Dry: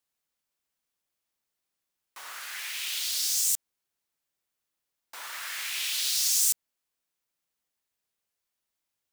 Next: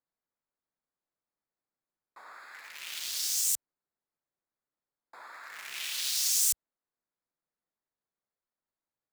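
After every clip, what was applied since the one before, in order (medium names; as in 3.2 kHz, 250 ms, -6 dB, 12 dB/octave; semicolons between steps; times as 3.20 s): local Wiener filter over 15 samples; peaking EQ 62 Hz -9.5 dB 0.84 oct; trim -1.5 dB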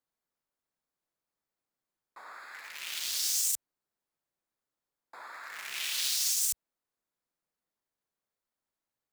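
peak limiter -20.5 dBFS, peak gain reduction 7.5 dB; trim +2 dB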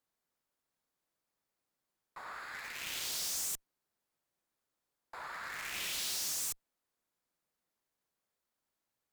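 valve stage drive 38 dB, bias 0.35; trim +3.5 dB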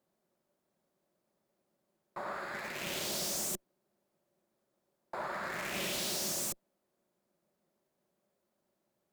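small resonant body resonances 200/360/560 Hz, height 18 dB, ringing for 35 ms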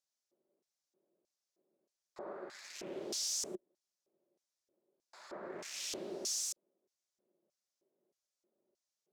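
LFO band-pass square 1.6 Hz 390–5800 Hz; trim +4 dB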